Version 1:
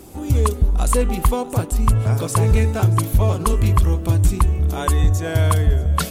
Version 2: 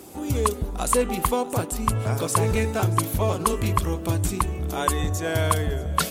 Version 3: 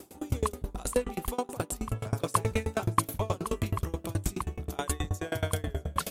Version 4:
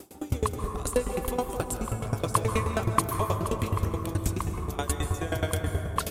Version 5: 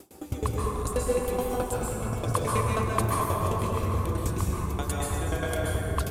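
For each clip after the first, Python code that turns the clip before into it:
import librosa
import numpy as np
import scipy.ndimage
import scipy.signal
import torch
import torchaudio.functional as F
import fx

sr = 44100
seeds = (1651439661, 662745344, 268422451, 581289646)

y1 = fx.highpass(x, sr, hz=240.0, slope=6)
y2 = fx.tremolo_decay(y1, sr, direction='decaying', hz=9.4, depth_db=27)
y3 = fx.rev_plate(y2, sr, seeds[0], rt60_s=2.4, hf_ratio=0.35, predelay_ms=120, drr_db=5.0)
y3 = F.gain(torch.from_numpy(y3), 1.5).numpy()
y4 = fx.rev_plate(y3, sr, seeds[1], rt60_s=1.5, hf_ratio=0.55, predelay_ms=115, drr_db=-3.0)
y4 = F.gain(torch.from_numpy(y4), -4.0).numpy()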